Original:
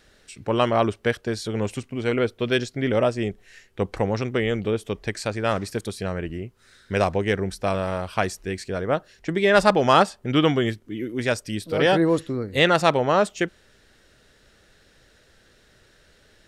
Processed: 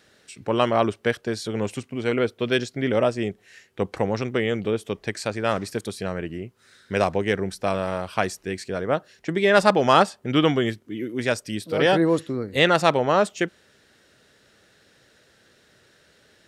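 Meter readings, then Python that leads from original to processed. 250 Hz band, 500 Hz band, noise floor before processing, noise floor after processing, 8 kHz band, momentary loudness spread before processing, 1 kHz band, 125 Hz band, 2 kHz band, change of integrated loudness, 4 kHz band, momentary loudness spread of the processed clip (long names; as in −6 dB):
0.0 dB, 0.0 dB, −58 dBFS, −60 dBFS, 0.0 dB, 12 LU, 0.0 dB, −2.0 dB, 0.0 dB, 0.0 dB, 0.0 dB, 12 LU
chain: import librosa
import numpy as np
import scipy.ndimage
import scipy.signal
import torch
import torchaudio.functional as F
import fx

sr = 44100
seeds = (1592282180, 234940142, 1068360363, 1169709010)

y = scipy.signal.sosfilt(scipy.signal.butter(2, 110.0, 'highpass', fs=sr, output='sos'), x)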